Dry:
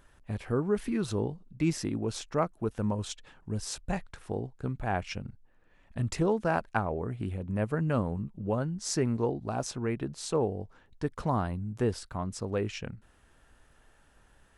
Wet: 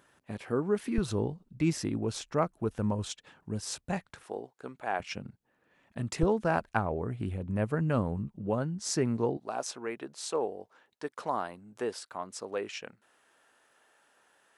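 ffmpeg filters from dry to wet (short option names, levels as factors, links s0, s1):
-af "asetnsamples=n=441:p=0,asendcmd='0.98 highpass f 41;3.07 highpass f 110;4.23 highpass f 420;5 highpass f 150;6.23 highpass f 43;8.36 highpass f 110;9.37 highpass f 430',highpass=170"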